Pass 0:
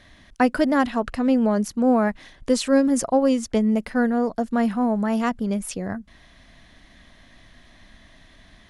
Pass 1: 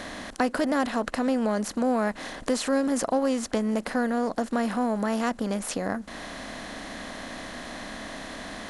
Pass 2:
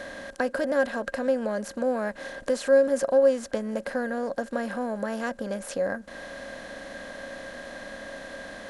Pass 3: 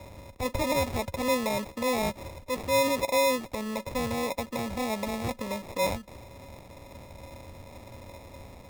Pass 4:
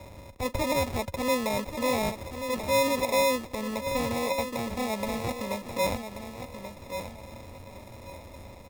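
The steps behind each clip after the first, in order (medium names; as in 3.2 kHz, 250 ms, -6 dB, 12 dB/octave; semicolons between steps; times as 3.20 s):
spectral levelling over time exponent 0.6; bass shelf 160 Hz -6 dB; compression 1.5:1, threshold -33 dBFS, peak gain reduction 7.5 dB
small resonant body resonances 550/1600 Hz, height 16 dB, ringing for 65 ms; trim -6 dB
peak limiter -20 dBFS, peak gain reduction 9.5 dB; sample-and-hold 29×; three bands expanded up and down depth 70%
feedback delay 1133 ms, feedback 23%, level -9 dB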